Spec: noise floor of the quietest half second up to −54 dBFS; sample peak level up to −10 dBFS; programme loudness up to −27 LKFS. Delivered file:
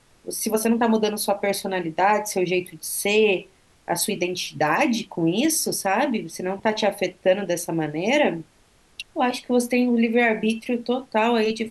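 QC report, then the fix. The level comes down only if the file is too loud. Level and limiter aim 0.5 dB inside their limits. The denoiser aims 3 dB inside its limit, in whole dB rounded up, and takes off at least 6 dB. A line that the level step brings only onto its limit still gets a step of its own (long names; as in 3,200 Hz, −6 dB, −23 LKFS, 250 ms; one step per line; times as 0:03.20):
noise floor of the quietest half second −58 dBFS: in spec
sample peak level −7.5 dBFS: out of spec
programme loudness −22.5 LKFS: out of spec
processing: level −5 dB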